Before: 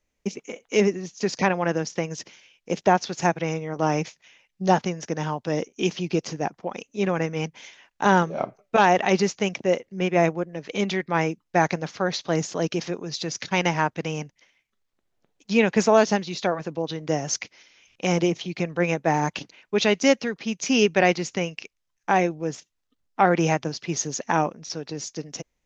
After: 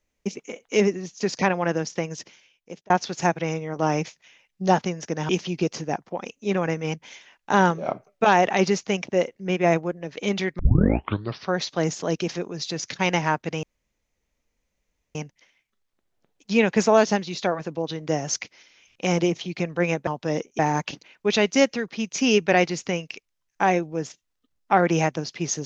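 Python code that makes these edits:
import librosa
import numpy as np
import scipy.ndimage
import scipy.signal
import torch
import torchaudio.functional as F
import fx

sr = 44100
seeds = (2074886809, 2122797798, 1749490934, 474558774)

y = fx.edit(x, sr, fx.fade_out_span(start_s=1.81, length_s=1.09, curve='qsin'),
    fx.move(start_s=5.29, length_s=0.52, to_s=19.07),
    fx.tape_start(start_s=11.11, length_s=0.94),
    fx.insert_room_tone(at_s=14.15, length_s=1.52), tone=tone)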